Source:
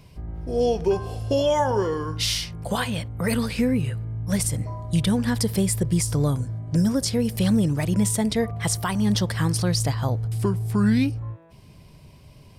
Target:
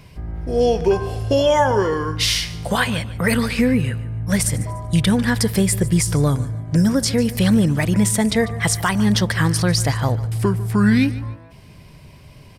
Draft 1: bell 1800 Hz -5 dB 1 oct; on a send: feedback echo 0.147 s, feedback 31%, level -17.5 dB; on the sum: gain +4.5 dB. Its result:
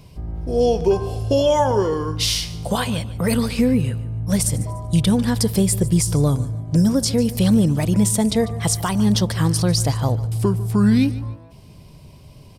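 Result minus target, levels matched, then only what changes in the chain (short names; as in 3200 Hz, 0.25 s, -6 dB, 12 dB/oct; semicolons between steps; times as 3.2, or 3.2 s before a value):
2000 Hz band -8.5 dB
change: bell 1800 Hz +6 dB 1 oct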